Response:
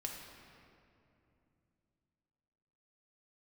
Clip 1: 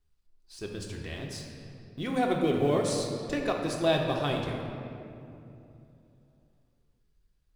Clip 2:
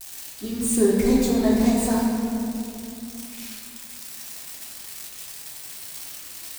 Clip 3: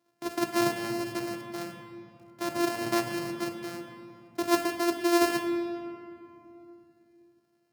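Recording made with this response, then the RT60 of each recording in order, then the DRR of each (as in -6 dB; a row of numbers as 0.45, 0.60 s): 1; 2.8, 2.7, 2.8 s; 0.0, -5.5, 4.5 dB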